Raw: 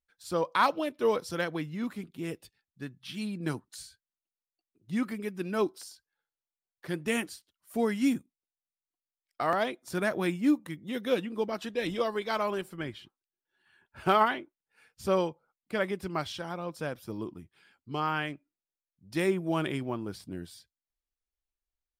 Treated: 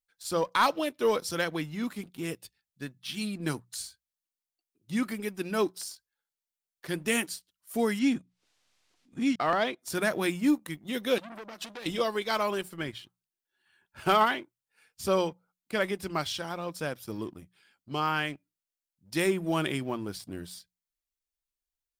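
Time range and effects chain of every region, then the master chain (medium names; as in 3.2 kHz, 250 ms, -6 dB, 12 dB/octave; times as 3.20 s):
7.99–9.79 s: chunks repeated in reverse 684 ms, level -1.5 dB + low-pass 4.8 kHz + upward compressor, threshold -46 dBFS
11.18–11.86 s: compression 12:1, threshold -35 dBFS + transformer saturation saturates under 1.5 kHz
whole clip: treble shelf 2.9 kHz +8 dB; hum notches 60/120/180 Hz; waveshaping leveller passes 1; trim -3 dB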